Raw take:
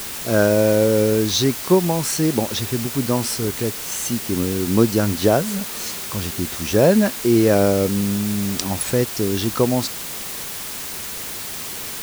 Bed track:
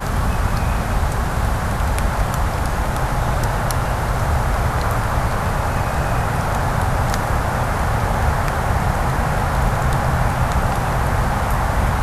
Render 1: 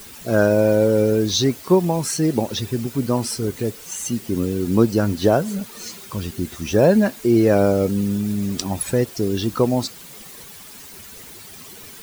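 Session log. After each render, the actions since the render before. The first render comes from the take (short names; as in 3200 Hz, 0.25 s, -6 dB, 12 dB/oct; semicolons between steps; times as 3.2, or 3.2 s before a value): denoiser 12 dB, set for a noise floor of -30 dBFS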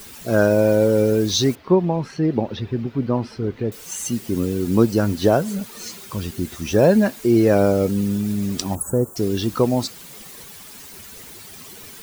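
1.55–3.72 air absorption 320 m; 8.75–9.16 elliptic band-stop 1300–7300 Hz, stop band 50 dB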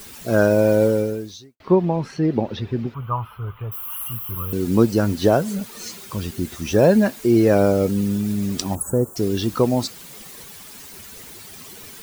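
0.86–1.6 fade out quadratic; 2.94–4.53 EQ curve 120 Hz 0 dB, 260 Hz -24 dB, 710 Hz -6 dB, 1200 Hz +12 dB, 1800 Hz -10 dB, 3100 Hz +1 dB, 4500 Hz -27 dB, 7400 Hz -28 dB, 12000 Hz +12 dB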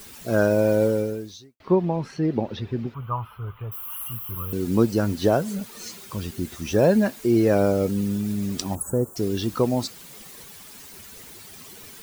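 gain -3.5 dB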